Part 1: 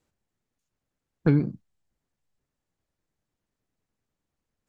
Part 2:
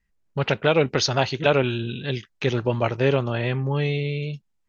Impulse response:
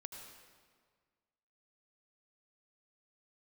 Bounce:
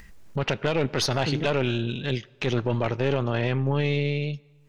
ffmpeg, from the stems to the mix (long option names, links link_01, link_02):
-filter_complex "[0:a]volume=-15.5dB[link_01];[1:a]aeval=exprs='(tanh(3.98*val(0)+0.7)-tanh(0.7))/3.98':channel_layout=same,acompressor=mode=upward:threshold=-31dB:ratio=2.5,volume=-3.5dB,asplit=2[link_02][link_03];[link_03]volume=-19dB[link_04];[2:a]atrim=start_sample=2205[link_05];[link_04][link_05]afir=irnorm=-1:irlink=0[link_06];[link_01][link_02][link_06]amix=inputs=3:normalize=0,acontrast=70,alimiter=limit=-13.5dB:level=0:latency=1:release=15"